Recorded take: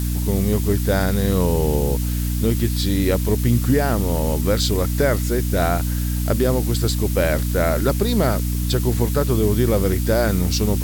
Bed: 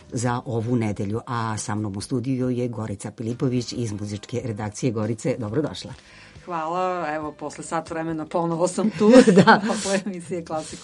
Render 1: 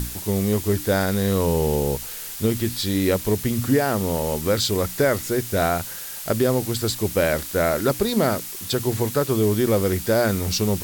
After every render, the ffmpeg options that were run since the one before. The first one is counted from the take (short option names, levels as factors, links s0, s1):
-af "bandreject=f=60:t=h:w=6,bandreject=f=120:t=h:w=6,bandreject=f=180:t=h:w=6,bandreject=f=240:t=h:w=6,bandreject=f=300:t=h:w=6"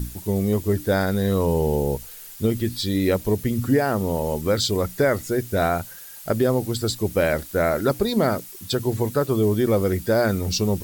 -af "afftdn=nr=10:nf=-34"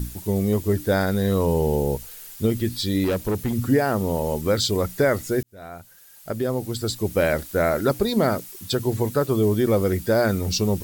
-filter_complex "[0:a]asettb=1/sr,asplit=3[s0][s1][s2];[s0]atrim=end=3.044[s3];[s1]atrim=start=3.04:end=3.53,asetpts=PTS-STARTPTS,afade=t=in:d=0.004:c=qsin,afade=t=out:st=0.486:d=0.004:c=qsin,asoftclip=type=hard:threshold=0.112[s4];[s2]atrim=start=3.526[s5];[s3][s4]acrossfade=d=0.004:c1=hsin:c2=qsin[s6];[s6][s5]acrossfade=d=0.004:c1=qsin:c2=hsin,asplit=2[s7][s8];[s7]atrim=end=5.43,asetpts=PTS-STARTPTS,afade=t=out:st=5.426:d=0.004:c=hsin[s9];[s8]atrim=start=5.43,asetpts=PTS-STARTPTS,afade=t=in:d=1.79[s10];[s9][s10]concat=n=2:v=0:a=1"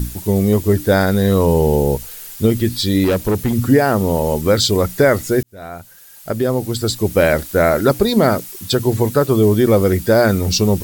-af "volume=2.24,alimiter=limit=0.794:level=0:latency=1"